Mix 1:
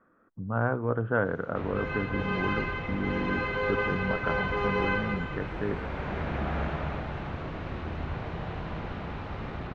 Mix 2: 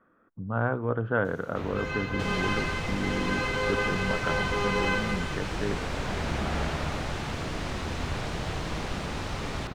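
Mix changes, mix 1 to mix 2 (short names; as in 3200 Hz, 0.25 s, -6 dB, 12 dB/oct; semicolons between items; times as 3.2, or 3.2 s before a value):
second sound +10.0 dB; master: remove LPF 2500 Hz 12 dB/oct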